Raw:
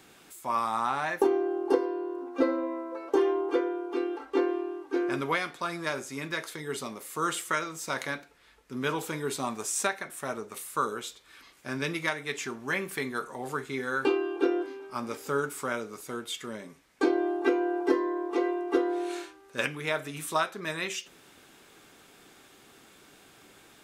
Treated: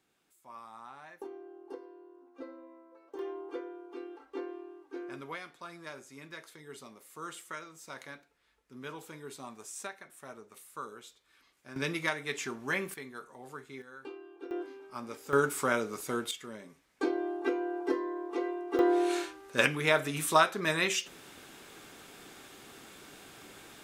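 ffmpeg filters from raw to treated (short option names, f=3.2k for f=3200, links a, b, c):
-af "asetnsamples=n=441:p=0,asendcmd='3.19 volume volume -13dB;11.76 volume volume -2dB;12.94 volume volume -12dB;13.82 volume volume -19.5dB;14.51 volume volume -7dB;15.33 volume volume 3dB;16.31 volume volume -6dB;18.79 volume volume 4dB',volume=-20dB"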